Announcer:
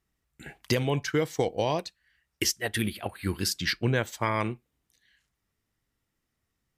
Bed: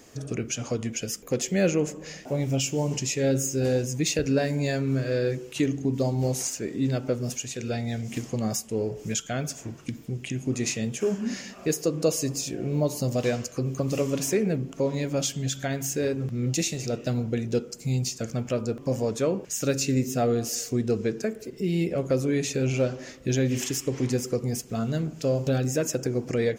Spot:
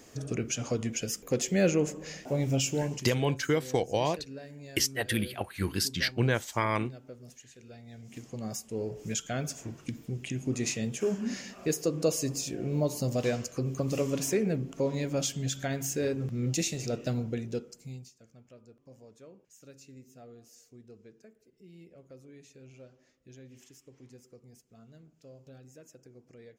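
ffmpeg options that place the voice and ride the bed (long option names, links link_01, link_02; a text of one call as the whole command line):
ffmpeg -i stem1.wav -i stem2.wav -filter_complex "[0:a]adelay=2350,volume=-1dB[link_01];[1:a]volume=14.5dB,afade=type=out:start_time=2.72:duration=0.42:silence=0.125893,afade=type=in:start_time=7.85:duration=1.44:silence=0.149624,afade=type=out:start_time=17.06:duration=1.05:silence=0.0668344[link_02];[link_01][link_02]amix=inputs=2:normalize=0" out.wav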